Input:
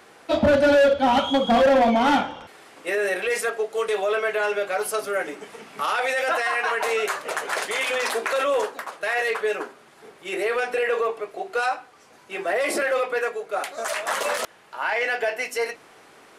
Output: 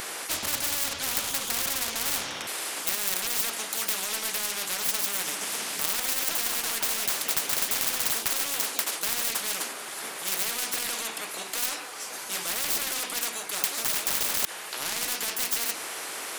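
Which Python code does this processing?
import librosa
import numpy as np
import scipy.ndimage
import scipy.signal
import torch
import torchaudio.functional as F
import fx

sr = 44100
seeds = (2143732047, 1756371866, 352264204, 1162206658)

y = fx.tracing_dist(x, sr, depth_ms=0.093)
y = fx.riaa(y, sr, side='recording')
y = fx.spectral_comp(y, sr, ratio=10.0)
y = y * librosa.db_to_amplitude(-1.0)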